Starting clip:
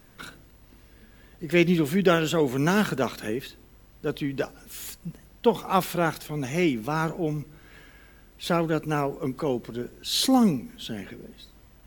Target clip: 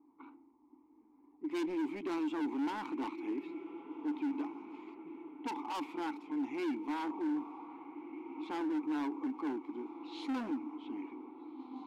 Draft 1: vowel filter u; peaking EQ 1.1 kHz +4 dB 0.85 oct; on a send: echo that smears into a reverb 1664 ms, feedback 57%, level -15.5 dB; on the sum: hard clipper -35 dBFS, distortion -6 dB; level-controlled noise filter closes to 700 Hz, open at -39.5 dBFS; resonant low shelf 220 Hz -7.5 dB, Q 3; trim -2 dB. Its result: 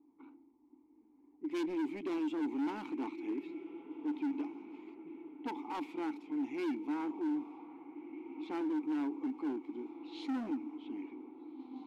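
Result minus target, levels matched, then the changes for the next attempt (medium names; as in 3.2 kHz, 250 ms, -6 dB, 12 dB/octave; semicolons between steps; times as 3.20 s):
1 kHz band -3.5 dB
change: peaking EQ 1.1 kHz +13.5 dB 0.85 oct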